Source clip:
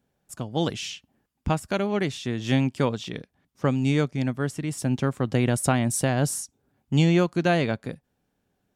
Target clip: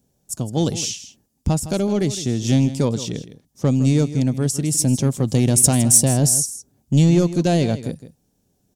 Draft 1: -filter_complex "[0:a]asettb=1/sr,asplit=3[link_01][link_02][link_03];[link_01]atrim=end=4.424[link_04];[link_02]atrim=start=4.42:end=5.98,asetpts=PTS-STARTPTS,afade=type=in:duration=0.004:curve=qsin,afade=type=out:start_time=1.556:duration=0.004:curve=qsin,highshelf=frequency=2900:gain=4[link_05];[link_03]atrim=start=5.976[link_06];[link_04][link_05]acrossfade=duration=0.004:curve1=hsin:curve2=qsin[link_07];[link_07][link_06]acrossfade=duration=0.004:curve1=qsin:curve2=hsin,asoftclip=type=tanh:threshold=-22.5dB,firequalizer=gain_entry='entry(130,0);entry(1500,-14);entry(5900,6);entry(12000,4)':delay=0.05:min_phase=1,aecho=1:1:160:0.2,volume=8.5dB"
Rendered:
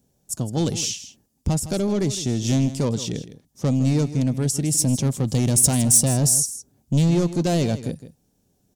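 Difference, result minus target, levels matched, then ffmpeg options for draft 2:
soft clipping: distortion +7 dB
-filter_complex "[0:a]asettb=1/sr,asplit=3[link_01][link_02][link_03];[link_01]atrim=end=4.424[link_04];[link_02]atrim=start=4.42:end=5.98,asetpts=PTS-STARTPTS,afade=type=in:duration=0.004:curve=qsin,afade=type=out:start_time=1.556:duration=0.004:curve=qsin,highshelf=frequency=2900:gain=4[link_05];[link_03]atrim=start=5.976[link_06];[link_04][link_05]acrossfade=duration=0.004:curve1=hsin:curve2=qsin[link_07];[link_07][link_06]acrossfade=duration=0.004:curve1=qsin:curve2=hsin,asoftclip=type=tanh:threshold=-15.5dB,firequalizer=gain_entry='entry(130,0);entry(1500,-14);entry(5900,6);entry(12000,4)':delay=0.05:min_phase=1,aecho=1:1:160:0.2,volume=8.5dB"

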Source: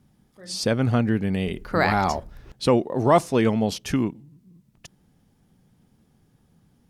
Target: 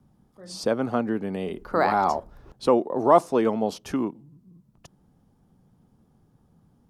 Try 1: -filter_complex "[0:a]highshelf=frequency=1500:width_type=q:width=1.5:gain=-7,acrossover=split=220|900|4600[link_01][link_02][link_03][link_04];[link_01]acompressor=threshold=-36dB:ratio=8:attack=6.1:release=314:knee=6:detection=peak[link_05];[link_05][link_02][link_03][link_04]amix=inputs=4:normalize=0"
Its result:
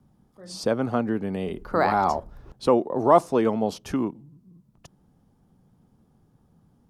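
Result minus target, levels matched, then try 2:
downward compressor: peak gain reduction −6.5 dB
-filter_complex "[0:a]highshelf=frequency=1500:width_type=q:width=1.5:gain=-7,acrossover=split=220|900|4600[link_01][link_02][link_03][link_04];[link_01]acompressor=threshold=-43.5dB:ratio=8:attack=6.1:release=314:knee=6:detection=peak[link_05];[link_05][link_02][link_03][link_04]amix=inputs=4:normalize=0"

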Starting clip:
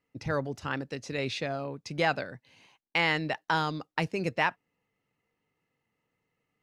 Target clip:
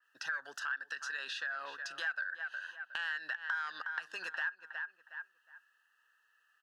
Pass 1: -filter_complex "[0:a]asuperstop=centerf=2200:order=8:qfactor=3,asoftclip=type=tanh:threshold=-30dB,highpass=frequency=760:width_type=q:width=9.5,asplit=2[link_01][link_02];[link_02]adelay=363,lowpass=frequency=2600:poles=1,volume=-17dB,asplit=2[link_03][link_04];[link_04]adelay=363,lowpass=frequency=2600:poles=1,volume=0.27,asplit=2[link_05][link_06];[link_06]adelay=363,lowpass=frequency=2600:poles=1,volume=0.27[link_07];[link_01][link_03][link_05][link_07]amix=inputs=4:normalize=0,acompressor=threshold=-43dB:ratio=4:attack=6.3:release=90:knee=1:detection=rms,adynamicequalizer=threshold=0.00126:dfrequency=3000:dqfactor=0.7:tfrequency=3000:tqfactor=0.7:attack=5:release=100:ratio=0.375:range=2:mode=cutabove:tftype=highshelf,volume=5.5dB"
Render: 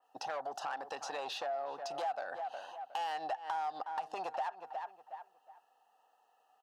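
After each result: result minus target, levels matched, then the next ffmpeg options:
2,000 Hz band −12.0 dB; soft clipping: distortion +10 dB
-filter_complex "[0:a]asuperstop=centerf=2200:order=8:qfactor=3,asoftclip=type=tanh:threshold=-30dB,highpass=frequency=1600:width_type=q:width=9.5,asplit=2[link_01][link_02];[link_02]adelay=363,lowpass=frequency=2600:poles=1,volume=-17dB,asplit=2[link_03][link_04];[link_04]adelay=363,lowpass=frequency=2600:poles=1,volume=0.27,asplit=2[link_05][link_06];[link_06]adelay=363,lowpass=frequency=2600:poles=1,volume=0.27[link_07];[link_01][link_03][link_05][link_07]amix=inputs=4:normalize=0,acompressor=threshold=-43dB:ratio=4:attack=6.3:release=90:knee=1:detection=rms,adynamicequalizer=threshold=0.00126:dfrequency=3000:dqfactor=0.7:tfrequency=3000:tqfactor=0.7:attack=5:release=100:ratio=0.375:range=2:mode=cutabove:tftype=highshelf,volume=5.5dB"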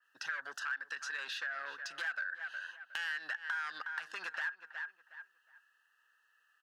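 soft clipping: distortion +10 dB
-filter_complex "[0:a]asuperstop=centerf=2200:order=8:qfactor=3,asoftclip=type=tanh:threshold=-19dB,highpass=frequency=1600:width_type=q:width=9.5,asplit=2[link_01][link_02];[link_02]adelay=363,lowpass=frequency=2600:poles=1,volume=-17dB,asplit=2[link_03][link_04];[link_04]adelay=363,lowpass=frequency=2600:poles=1,volume=0.27,asplit=2[link_05][link_06];[link_06]adelay=363,lowpass=frequency=2600:poles=1,volume=0.27[link_07];[link_01][link_03][link_05][link_07]amix=inputs=4:normalize=0,acompressor=threshold=-43dB:ratio=4:attack=6.3:release=90:knee=1:detection=rms,adynamicequalizer=threshold=0.00126:dfrequency=3000:dqfactor=0.7:tfrequency=3000:tqfactor=0.7:attack=5:release=100:ratio=0.375:range=2:mode=cutabove:tftype=highshelf,volume=5.5dB"

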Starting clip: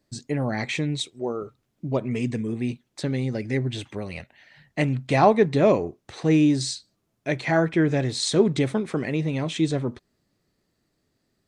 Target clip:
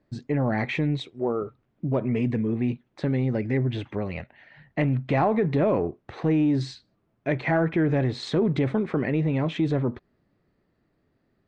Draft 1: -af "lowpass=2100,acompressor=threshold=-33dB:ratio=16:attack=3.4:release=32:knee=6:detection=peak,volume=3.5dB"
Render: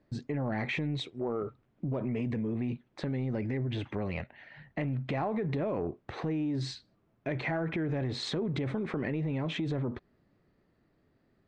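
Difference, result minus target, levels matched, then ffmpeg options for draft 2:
downward compressor: peak gain reduction +10.5 dB
-af "lowpass=2100,acompressor=threshold=-22dB:ratio=16:attack=3.4:release=32:knee=6:detection=peak,volume=3.5dB"

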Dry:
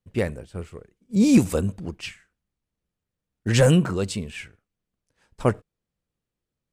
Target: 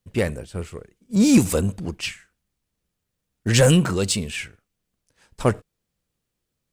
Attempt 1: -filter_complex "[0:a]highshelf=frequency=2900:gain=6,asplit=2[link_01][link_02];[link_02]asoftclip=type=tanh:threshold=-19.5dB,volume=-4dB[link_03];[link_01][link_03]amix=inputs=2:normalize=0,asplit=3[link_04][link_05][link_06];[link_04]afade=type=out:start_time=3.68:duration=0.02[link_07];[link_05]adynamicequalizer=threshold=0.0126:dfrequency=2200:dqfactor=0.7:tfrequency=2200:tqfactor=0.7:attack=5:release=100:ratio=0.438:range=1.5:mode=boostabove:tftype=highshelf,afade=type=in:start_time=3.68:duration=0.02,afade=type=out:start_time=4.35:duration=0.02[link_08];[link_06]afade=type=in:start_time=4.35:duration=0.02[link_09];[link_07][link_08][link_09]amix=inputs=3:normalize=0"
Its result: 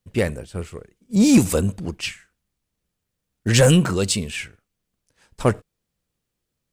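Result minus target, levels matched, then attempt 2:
soft clipping: distortion −4 dB
-filter_complex "[0:a]highshelf=frequency=2900:gain=6,asplit=2[link_01][link_02];[link_02]asoftclip=type=tanh:threshold=-27dB,volume=-4dB[link_03];[link_01][link_03]amix=inputs=2:normalize=0,asplit=3[link_04][link_05][link_06];[link_04]afade=type=out:start_time=3.68:duration=0.02[link_07];[link_05]adynamicequalizer=threshold=0.0126:dfrequency=2200:dqfactor=0.7:tfrequency=2200:tqfactor=0.7:attack=5:release=100:ratio=0.438:range=1.5:mode=boostabove:tftype=highshelf,afade=type=in:start_time=3.68:duration=0.02,afade=type=out:start_time=4.35:duration=0.02[link_08];[link_06]afade=type=in:start_time=4.35:duration=0.02[link_09];[link_07][link_08][link_09]amix=inputs=3:normalize=0"

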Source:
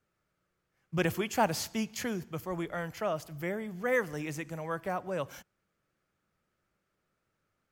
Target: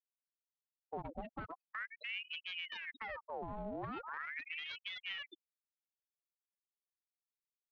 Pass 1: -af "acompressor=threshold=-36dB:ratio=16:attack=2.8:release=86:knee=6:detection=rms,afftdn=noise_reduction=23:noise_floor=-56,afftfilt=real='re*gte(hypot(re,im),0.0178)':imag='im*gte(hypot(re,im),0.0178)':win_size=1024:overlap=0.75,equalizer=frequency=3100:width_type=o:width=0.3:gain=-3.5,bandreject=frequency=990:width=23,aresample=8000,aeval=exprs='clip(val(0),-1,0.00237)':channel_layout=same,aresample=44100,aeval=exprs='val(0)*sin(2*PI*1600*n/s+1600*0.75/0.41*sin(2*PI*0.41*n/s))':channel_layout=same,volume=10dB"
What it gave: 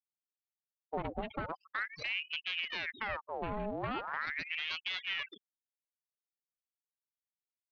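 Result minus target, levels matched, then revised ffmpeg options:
downward compressor: peak gain reduction −6.5 dB
-af "acompressor=threshold=-43dB:ratio=16:attack=2.8:release=86:knee=6:detection=rms,afftdn=noise_reduction=23:noise_floor=-56,afftfilt=real='re*gte(hypot(re,im),0.0178)':imag='im*gte(hypot(re,im),0.0178)':win_size=1024:overlap=0.75,equalizer=frequency=3100:width_type=o:width=0.3:gain=-3.5,bandreject=frequency=990:width=23,aresample=8000,aeval=exprs='clip(val(0),-1,0.00237)':channel_layout=same,aresample=44100,aeval=exprs='val(0)*sin(2*PI*1600*n/s+1600*0.75/0.41*sin(2*PI*0.41*n/s))':channel_layout=same,volume=10dB"

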